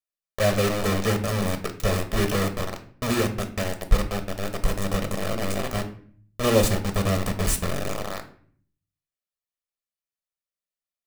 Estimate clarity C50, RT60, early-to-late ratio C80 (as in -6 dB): 12.0 dB, 0.50 s, 16.0 dB